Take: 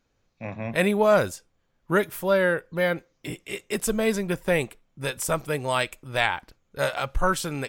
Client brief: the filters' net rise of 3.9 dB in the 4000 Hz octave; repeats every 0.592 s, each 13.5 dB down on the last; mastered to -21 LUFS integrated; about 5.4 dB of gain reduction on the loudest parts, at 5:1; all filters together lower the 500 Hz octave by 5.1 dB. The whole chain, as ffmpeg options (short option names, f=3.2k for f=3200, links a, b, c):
-af "equalizer=f=500:t=o:g=-6.5,equalizer=f=4k:t=o:g=5,acompressor=threshold=-25dB:ratio=5,aecho=1:1:592|1184:0.211|0.0444,volume=10dB"